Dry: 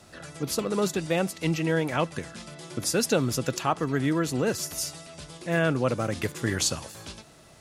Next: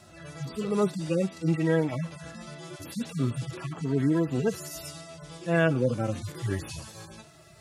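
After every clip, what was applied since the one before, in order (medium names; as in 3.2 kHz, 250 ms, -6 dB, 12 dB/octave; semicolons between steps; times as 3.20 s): harmonic-percussive separation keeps harmonic; trim +1.5 dB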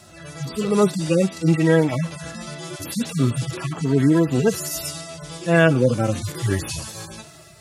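treble shelf 4.1 kHz +5.5 dB; level rider gain up to 3.5 dB; trim +4.5 dB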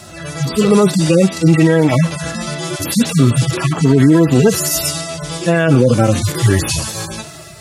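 loudness maximiser +12 dB; trim -1 dB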